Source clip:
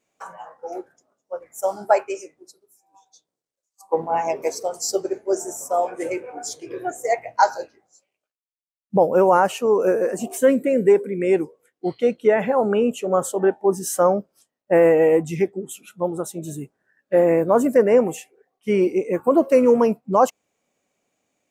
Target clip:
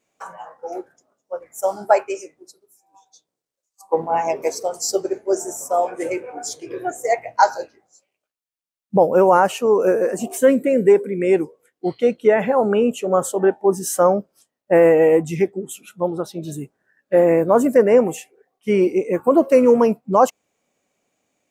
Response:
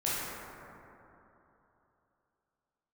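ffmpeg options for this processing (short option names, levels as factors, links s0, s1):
-filter_complex "[0:a]asettb=1/sr,asplit=3[s0][s1][s2];[s0]atrim=end=16.074[s3];[s1]atrim=start=16.07:end=16.52,asetpts=PTS-STARTPTS,afade=t=in:d=0.004:c=qsin,afade=t=out:st=0.446:d=0.004:c=qsin,highshelf=f=5900:t=q:w=3:g=-8[s4];[s2]atrim=start=16.516[s5];[s3][s4]acrossfade=d=0.004:c1=hsin:c2=qsin[s6];[s6][s5]acrossfade=d=0.004:c1=qsin:c2=hsin,volume=1.26"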